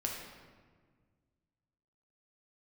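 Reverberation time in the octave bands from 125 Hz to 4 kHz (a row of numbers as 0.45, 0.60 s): 2.4, 2.2, 1.7, 1.5, 1.3, 0.95 s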